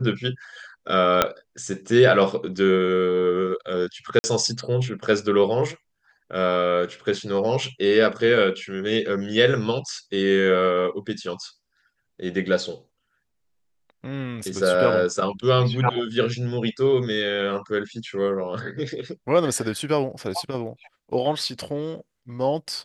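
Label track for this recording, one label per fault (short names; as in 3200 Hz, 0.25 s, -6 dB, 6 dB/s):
1.220000	1.220000	pop -2 dBFS
4.190000	4.240000	gap 50 ms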